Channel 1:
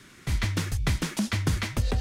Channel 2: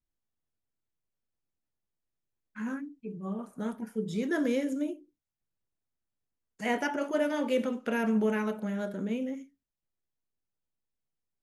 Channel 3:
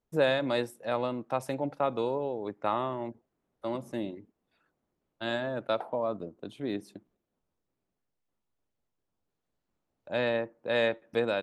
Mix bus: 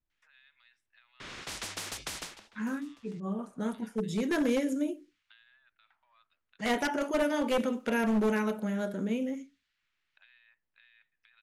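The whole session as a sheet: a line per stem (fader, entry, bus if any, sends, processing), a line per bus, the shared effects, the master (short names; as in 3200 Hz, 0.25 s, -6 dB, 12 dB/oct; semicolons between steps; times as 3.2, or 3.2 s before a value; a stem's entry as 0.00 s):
-5.5 dB, 1.20 s, no send, vibrato 1.6 Hz 7.7 cents; spectral compressor 10:1; auto duck -24 dB, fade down 0.35 s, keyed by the second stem
+1.0 dB, 0.00 s, no send, one-sided fold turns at -24 dBFS; high shelf 5000 Hz +4.5 dB
-15.0 dB, 0.10 s, no send, negative-ratio compressor -32 dBFS, ratio -1; inverse Chebyshev high-pass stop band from 400 Hz, stop band 70 dB; three-band squash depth 100%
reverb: off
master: low-pass opened by the level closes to 2700 Hz, open at -29 dBFS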